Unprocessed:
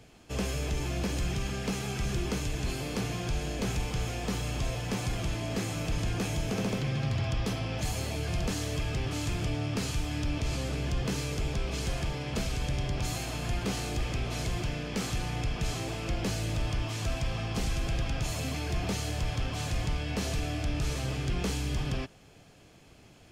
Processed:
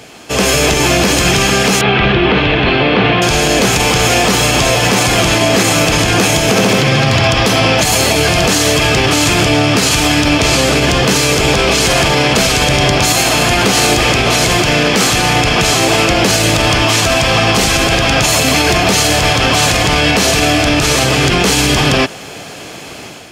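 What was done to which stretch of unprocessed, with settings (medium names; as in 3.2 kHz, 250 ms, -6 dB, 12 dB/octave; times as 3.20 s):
1.81–3.22 s: steep low-pass 3.5 kHz
whole clip: high-pass 410 Hz 6 dB/octave; level rider gain up to 7.5 dB; loudness maximiser +24 dB; trim -1 dB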